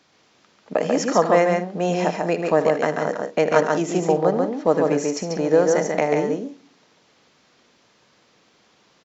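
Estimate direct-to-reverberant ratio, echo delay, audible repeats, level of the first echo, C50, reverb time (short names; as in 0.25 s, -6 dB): none, 77 ms, 3, -13.5 dB, none, none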